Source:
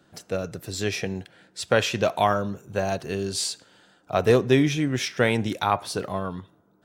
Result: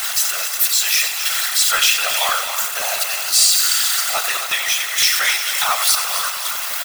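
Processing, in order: zero-crossing step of -23 dBFS; HPF 890 Hz 24 dB/oct; tilt +3.5 dB/oct; in parallel at -6 dB: wavefolder -13 dBFS; on the sum: comb 1.5 ms, depth 43%; on a send: multi-head echo 88 ms, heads first and third, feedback 61%, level -10.5 dB; on the sum: whisperiser; crackling interface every 0.17 s, samples 512, repeat, from 0.75; gain -1.5 dB

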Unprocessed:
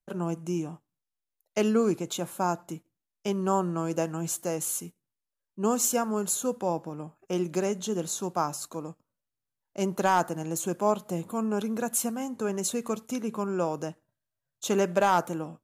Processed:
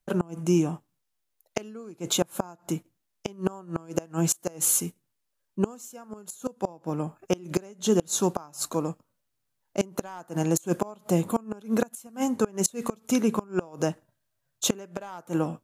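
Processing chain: flipped gate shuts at -19 dBFS, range -26 dB; gain +8.5 dB

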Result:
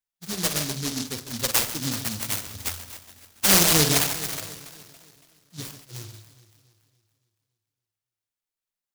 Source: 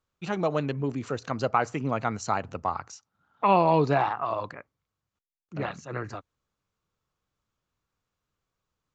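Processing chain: per-bin expansion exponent 2; high shelf 6500 Hz +10.5 dB; echo with dull and thin repeats by turns 0.141 s, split 990 Hz, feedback 67%, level -10 dB; on a send at -9 dB: reverb, pre-delay 46 ms; on the sum: noise-modulated delay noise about 4900 Hz, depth 0.44 ms; gain +4.5 dB

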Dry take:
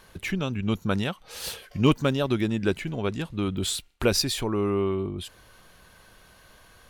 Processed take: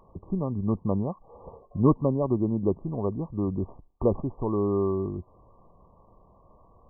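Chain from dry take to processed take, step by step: tracing distortion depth 0.022 ms; brick-wall FIR low-pass 1200 Hz

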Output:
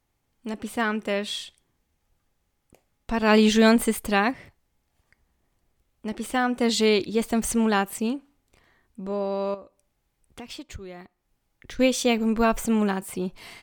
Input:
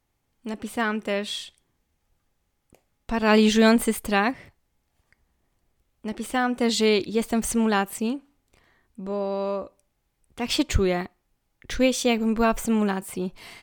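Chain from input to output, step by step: 9.54–11.79 compressor 4:1, threshold -40 dBFS, peak gain reduction 21 dB

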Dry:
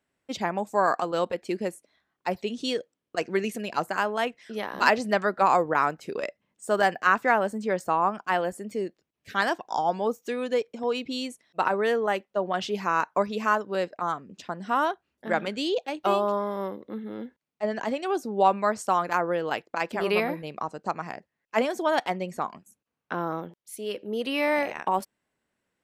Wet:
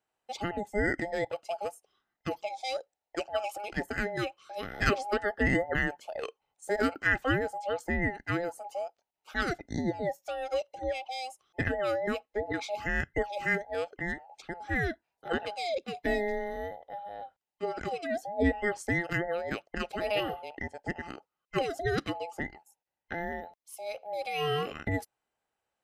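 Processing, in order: band inversion scrambler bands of 1000 Hz; gain -5.5 dB

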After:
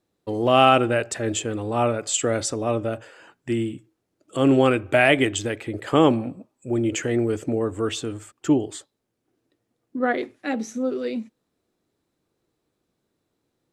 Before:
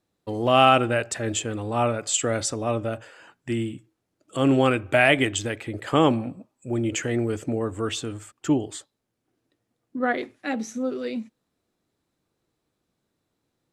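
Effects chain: bell 390 Hz +4 dB 1.1 oct

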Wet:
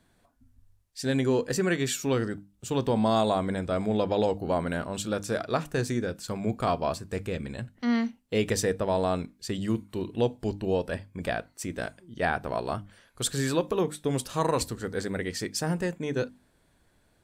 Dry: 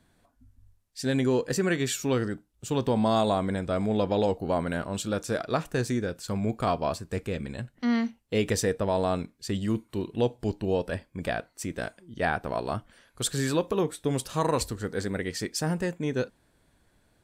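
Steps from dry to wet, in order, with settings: notches 50/100/150/200/250/300 Hz

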